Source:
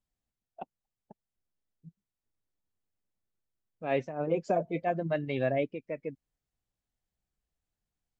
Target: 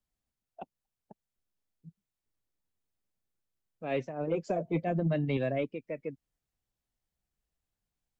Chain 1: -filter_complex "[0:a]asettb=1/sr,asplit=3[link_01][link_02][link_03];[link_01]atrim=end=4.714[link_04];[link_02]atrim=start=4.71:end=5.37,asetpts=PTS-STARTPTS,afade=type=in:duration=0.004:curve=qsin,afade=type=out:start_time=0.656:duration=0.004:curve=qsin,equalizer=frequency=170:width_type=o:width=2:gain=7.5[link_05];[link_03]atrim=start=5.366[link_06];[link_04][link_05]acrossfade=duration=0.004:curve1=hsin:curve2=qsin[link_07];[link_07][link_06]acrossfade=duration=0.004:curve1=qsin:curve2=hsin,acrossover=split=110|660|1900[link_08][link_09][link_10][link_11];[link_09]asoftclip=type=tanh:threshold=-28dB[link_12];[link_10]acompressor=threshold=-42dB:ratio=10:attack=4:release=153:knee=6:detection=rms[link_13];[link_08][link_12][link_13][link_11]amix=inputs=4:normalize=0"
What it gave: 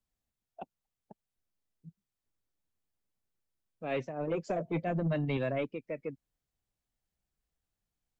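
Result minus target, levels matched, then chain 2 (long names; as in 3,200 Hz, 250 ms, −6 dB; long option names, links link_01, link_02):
soft clipping: distortion +9 dB
-filter_complex "[0:a]asettb=1/sr,asplit=3[link_01][link_02][link_03];[link_01]atrim=end=4.714[link_04];[link_02]atrim=start=4.71:end=5.37,asetpts=PTS-STARTPTS,afade=type=in:duration=0.004:curve=qsin,afade=type=out:start_time=0.656:duration=0.004:curve=qsin,equalizer=frequency=170:width_type=o:width=2:gain=7.5[link_05];[link_03]atrim=start=5.366[link_06];[link_04][link_05]acrossfade=duration=0.004:curve1=hsin:curve2=qsin[link_07];[link_07][link_06]acrossfade=duration=0.004:curve1=qsin:curve2=hsin,acrossover=split=110|660|1900[link_08][link_09][link_10][link_11];[link_09]asoftclip=type=tanh:threshold=-21dB[link_12];[link_10]acompressor=threshold=-42dB:ratio=10:attack=4:release=153:knee=6:detection=rms[link_13];[link_08][link_12][link_13][link_11]amix=inputs=4:normalize=0"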